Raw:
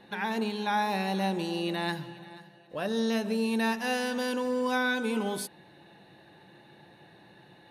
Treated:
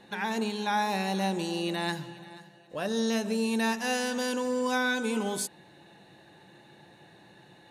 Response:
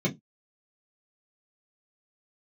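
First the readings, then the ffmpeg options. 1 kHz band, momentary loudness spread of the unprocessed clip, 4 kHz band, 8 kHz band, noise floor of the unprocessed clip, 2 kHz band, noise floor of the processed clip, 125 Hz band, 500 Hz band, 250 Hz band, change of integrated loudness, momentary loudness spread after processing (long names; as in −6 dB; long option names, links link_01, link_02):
0.0 dB, 10 LU, +1.5 dB, +6.0 dB, −56 dBFS, 0.0 dB, −56 dBFS, 0.0 dB, 0.0 dB, 0.0 dB, +0.5 dB, 9 LU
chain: -af "equalizer=frequency=7200:width_type=o:width=0.59:gain=11.5"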